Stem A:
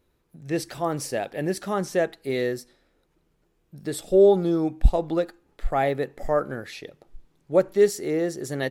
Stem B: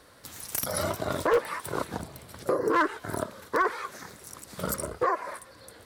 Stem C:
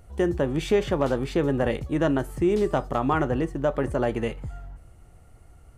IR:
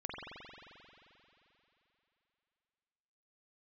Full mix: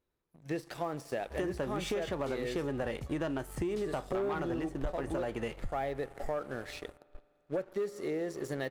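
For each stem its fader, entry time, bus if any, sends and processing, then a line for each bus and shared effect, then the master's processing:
−7.5 dB, 0.00 s, send −20 dB, de-essing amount 80%; high-shelf EQ 2,100 Hz −5.5 dB
muted
−5.5 dB, 1.20 s, no send, no processing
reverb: on, RT60 3.2 s, pre-delay 44 ms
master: low-shelf EQ 460 Hz −6 dB; leveller curve on the samples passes 2; downward compressor 6 to 1, threshold −32 dBFS, peak gain reduction 13.5 dB

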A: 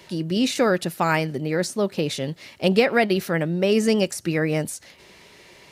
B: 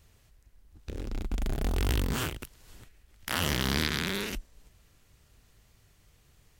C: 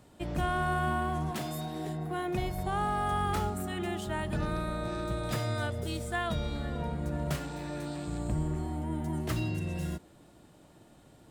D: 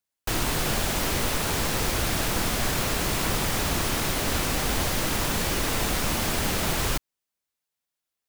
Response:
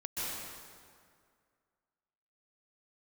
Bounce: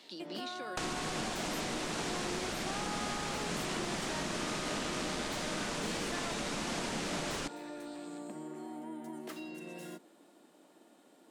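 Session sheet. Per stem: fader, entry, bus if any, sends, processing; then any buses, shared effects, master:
−16.0 dB, 0.00 s, bus A, no send, high-pass filter 250 Hz 24 dB per octave; parametric band 3,900 Hz +14 dB 1.1 octaves; downward compressor, threshold −27 dBFS, peak gain reduction 16 dB
−5.5 dB, 1.40 s, bus A, no send, no processing
−3.0 dB, 0.00 s, no bus, no send, high-pass filter 250 Hz 24 dB per octave; downward compressor 4 to 1, threshold −39 dBFS, peak gain reduction 10 dB
+0.5 dB, 0.50 s, bus A, no send, no processing
bus A: 0.0 dB, low-pass filter 8,600 Hz 24 dB per octave; downward compressor 5 to 1, threshold −34 dBFS, peak gain reduction 12.5 dB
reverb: not used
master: low shelf with overshoot 130 Hz −10 dB, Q 1.5

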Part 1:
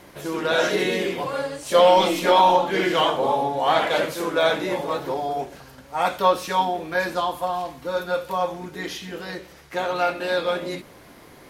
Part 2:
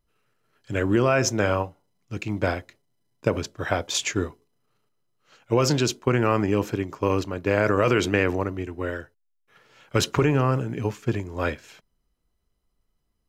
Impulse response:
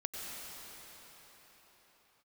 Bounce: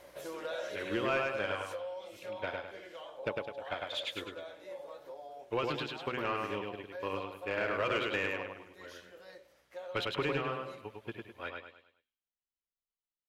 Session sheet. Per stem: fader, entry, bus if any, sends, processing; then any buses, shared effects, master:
−3.0 dB, 0.00 s, no send, no echo send, downward compressor 6 to 1, threshold −25 dBFS, peak gain reduction 13 dB; mains hum 60 Hz, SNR 19 dB; parametric band 560 Hz +14 dB 0.35 octaves; automatic ducking −12 dB, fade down 1.85 s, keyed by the second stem
+2.0 dB, 0.00 s, no send, echo send −4 dB, high shelf with overshoot 4,600 Hz −10 dB, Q 3; hum removal 126.1 Hz, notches 3; expander for the loud parts 2.5 to 1, over −31 dBFS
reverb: not used
echo: repeating echo 103 ms, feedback 38%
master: first-order pre-emphasis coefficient 0.8; mid-hump overdrive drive 13 dB, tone 1,500 Hz, clips at −20 dBFS

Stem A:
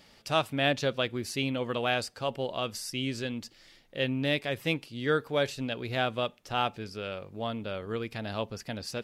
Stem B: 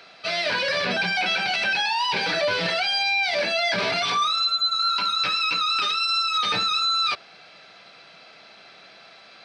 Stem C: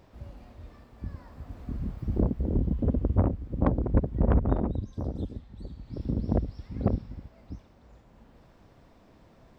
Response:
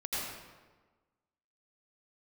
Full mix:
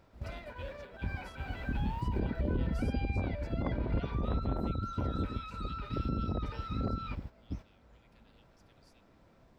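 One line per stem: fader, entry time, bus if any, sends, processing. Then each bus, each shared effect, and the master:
−19.0 dB, 0.00 s, no send, Butterworth high-pass 1,800 Hz; downward compressor, threshold −36 dBFS, peak gain reduction 11.5 dB
−12.0 dB, 0.00 s, no send, low-pass filter 1,300 Hz 12 dB per octave; comb filter 2.1 ms, depth 63%; brickwall limiter −25.5 dBFS, peak gain reduction 10 dB
+1.5 dB, 0.00 s, no send, downward compressor, threshold −27 dBFS, peak gain reduction 10 dB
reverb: not used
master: noise gate −42 dBFS, range −8 dB; brickwall limiter −23.5 dBFS, peak gain reduction 9.5 dB

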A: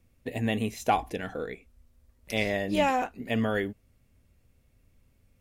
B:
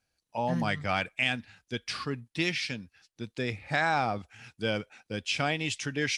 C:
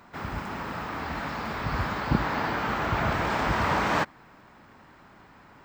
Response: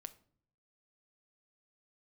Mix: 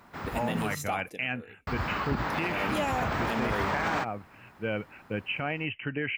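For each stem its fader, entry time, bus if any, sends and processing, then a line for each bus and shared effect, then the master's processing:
0:00.80 −2.5 dB → 0:01.37 −15 dB → 0:02.34 −15 dB → 0:02.64 −2.5 dB, 0.00 s, no send, high-pass filter 150 Hz; high-shelf EQ 6,200 Hz +8.5 dB
+1.0 dB, 0.00 s, no send, Chebyshev low-pass filter 3,000 Hz, order 10; speech leveller within 4 dB 0.5 s
−2.5 dB, 0.00 s, muted 0:00.75–0:01.67, no send, no processing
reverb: not used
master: brickwall limiter −19.5 dBFS, peak gain reduction 7.5 dB

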